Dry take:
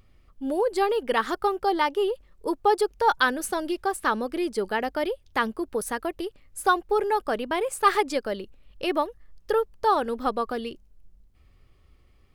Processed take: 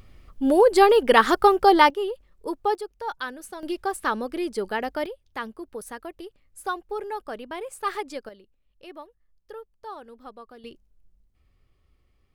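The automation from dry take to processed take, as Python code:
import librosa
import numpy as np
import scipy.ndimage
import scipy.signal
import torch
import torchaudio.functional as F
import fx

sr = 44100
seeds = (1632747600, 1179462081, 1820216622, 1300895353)

y = fx.gain(x, sr, db=fx.steps((0.0, 8.0), (1.9, -3.0), (2.75, -10.5), (3.63, -1.0), (5.06, -8.0), (8.29, -17.0), (10.64, -7.0)))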